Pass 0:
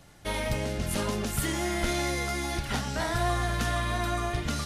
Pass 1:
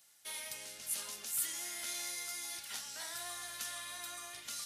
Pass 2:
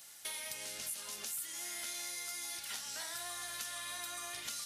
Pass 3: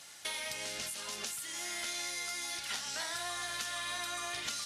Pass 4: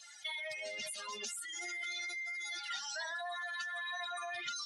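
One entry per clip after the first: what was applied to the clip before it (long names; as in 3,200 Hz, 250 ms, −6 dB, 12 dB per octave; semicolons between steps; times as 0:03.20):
first difference; level −2 dB
downward compressor 6 to 1, threshold −51 dBFS, peak gain reduction 18.5 dB; level +11 dB
high-frequency loss of the air 54 metres; level +7 dB
expanding power law on the bin magnitudes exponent 3; level −1.5 dB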